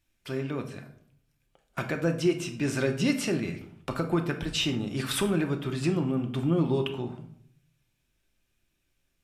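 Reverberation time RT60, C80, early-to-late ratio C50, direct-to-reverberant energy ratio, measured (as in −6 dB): 0.60 s, 14.5 dB, 10.5 dB, 4.0 dB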